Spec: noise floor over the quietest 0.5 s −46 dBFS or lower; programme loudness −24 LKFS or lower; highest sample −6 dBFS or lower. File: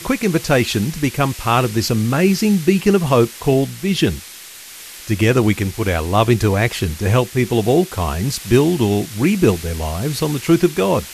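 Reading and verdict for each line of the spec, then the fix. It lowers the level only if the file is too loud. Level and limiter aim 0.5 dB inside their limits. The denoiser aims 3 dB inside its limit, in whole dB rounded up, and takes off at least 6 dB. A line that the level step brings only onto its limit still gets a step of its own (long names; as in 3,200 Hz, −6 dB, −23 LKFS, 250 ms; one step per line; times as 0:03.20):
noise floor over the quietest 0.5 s −37 dBFS: out of spec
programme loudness −17.0 LKFS: out of spec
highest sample −1.5 dBFS: out of spec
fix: broadband denoise 6 dB, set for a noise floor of −37 dBFS
level −7.5 dB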